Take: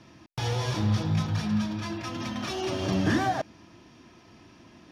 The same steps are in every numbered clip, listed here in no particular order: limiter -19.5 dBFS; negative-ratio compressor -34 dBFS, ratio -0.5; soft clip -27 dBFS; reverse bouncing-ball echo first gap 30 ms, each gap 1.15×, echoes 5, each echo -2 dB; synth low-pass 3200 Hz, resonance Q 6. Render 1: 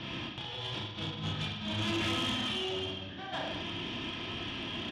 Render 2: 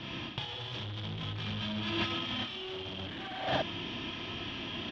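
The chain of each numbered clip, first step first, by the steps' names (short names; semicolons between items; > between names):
synth low-pass > negative-ratio compressor > reverse bouncing-ball echo > limiter > soft clip; reverse bouncing-ball echo > soft clip > limiter > synth low-pass > negative-ratio compressor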